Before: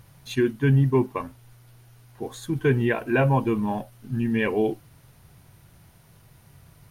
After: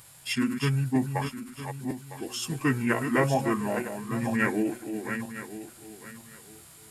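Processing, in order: regenerating reverse delay 0.478 s, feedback 47%, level -7 dB; tilt +3 dB/oct; formant shift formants -4 st

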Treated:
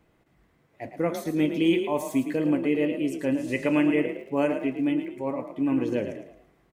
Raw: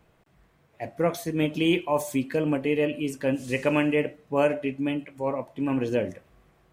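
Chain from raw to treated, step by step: small resonant body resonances 290/2000 Hz, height 7 dB, ringing for 25 ms; frequency-shifting echo 0.11 s, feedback 35%, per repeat +34 Hz, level -9 dB; 4.07–5.09 crackle 120/s -46 dBFS; gain -4 dB

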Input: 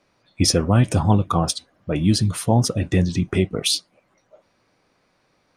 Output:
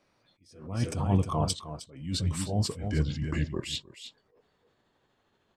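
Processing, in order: gliding pitch shift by -5.5 st starting unshifted; echo 0.31 s -11 dB; attack slew limiter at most 100 dB/s; gain -5.5 dB

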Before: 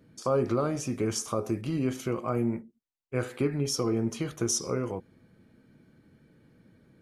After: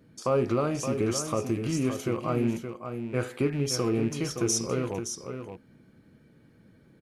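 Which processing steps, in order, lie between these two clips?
rattling part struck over -33 dBFS, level -37 dBFS; echo 0.569 s -8 dB; gain +1 dB

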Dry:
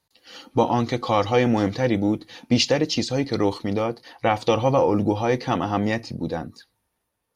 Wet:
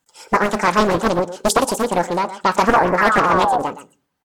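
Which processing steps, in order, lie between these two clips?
bell 540 Hz +3.5 dB 0.77 oct; painted sound fall, 5.16–6.21, 410–900 Hz -19 dBFS; on a send: echo 0.207 s -13.5 dB; on the sum: shoebox room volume 960 m³, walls furnished, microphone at 0.34 m; speed mistake 45 rpm record played at 78 rpm; Doppler distortion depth 0.97 ms; gain +2 dB

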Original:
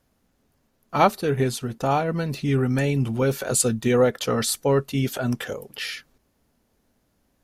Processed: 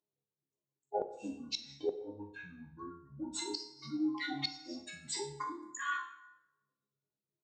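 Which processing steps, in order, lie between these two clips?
spectral contrast raised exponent 2.6; Chebyshev high-pass 940 Hz, order 2; resonant high shelf 5200 Hz +6.5 dB, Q 3; in parallel at 0 dB: compressor 5:1, threshold -35 dBFS, peak gain reduction 23 dB; on the sum: pitch shift -8.5 st; resonator bank C#2 fifth, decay 0.44 s; flipped gate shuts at -26 dBFS, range -27 dB; plate-style reverb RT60 1 s, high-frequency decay 0.7×, DRR 9 dB; gain +4 dB

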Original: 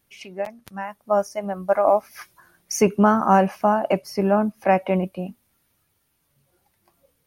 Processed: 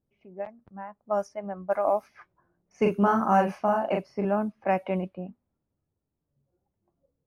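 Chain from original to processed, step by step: low-pass opened by the level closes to 540 Hz, open at -14.5 dBFS; 2.72–4.25 doubler 40 ms -3 dB; gain -7 dB

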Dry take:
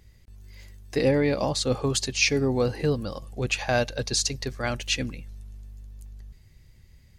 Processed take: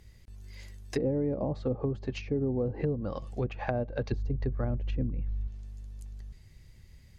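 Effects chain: 4.11–5.48 low shelf 150 Hz +10.5 dB; treble ducked by the level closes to 520 Hz, closed at -21.5 dBFS; compressor 3:1, threshold -27 dBFS, peak gain reduction 7 dB

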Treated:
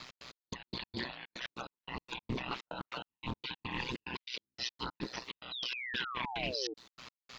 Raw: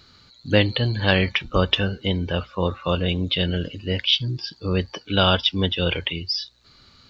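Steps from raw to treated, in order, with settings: band inversion scrambler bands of 500 Hz; spectral gate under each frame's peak -10 dB weak; HPF 78 Hz 24 dB/oct; negative-ratio compressor -40 dBFS, ratio -1; limiter -28 dBFS, peak gain reduction 8.5 dB; step gate "x.x..x.x.xxx." 150 bpm -60 dB; painted sound fall, 5.29–6.47, 380–4200 Hz -42 dBFS; speed mistake 25 fps video run at 24 fps; ring modulator 62 Hz; Doppler distortion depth 0.24 ms; gain +4 dB

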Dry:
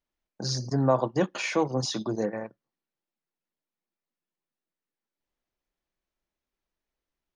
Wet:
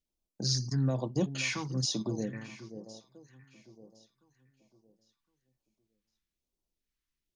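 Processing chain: echo with dull and thin repeats by turns 0.531 s, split 1100 Hz, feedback 51%, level -13.5 dB; dynamic EQ 490 Hz, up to -6 dB, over -35 dBFS, Q 0.74; phaser stages 2, 1.1 Hz, lowest notch 560–1700 Hz

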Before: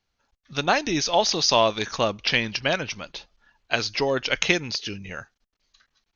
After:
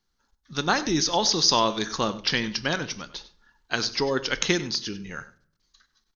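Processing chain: fifteen-band EQ 100 Hz -8 dB, 630 Hz -11 dB, 2500 Hz -11 dB; echo 97 ms -16.5 dB; on a send at -14 dB: reverb RT60 0.55 s, pre-delay 6 ms; on the sum: gain +2.5 dB

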